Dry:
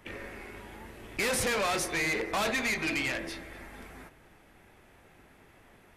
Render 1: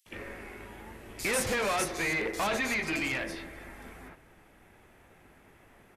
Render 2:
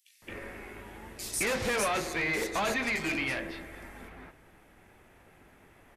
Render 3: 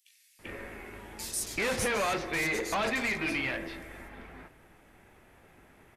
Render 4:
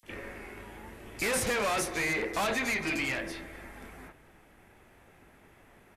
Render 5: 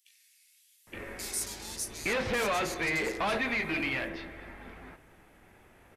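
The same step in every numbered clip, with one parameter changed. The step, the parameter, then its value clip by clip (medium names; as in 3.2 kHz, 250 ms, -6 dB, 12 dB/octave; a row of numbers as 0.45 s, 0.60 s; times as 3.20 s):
bands offset in time, time: 60 ms, 220 ms, 390 ms, 30 ms, 870 ms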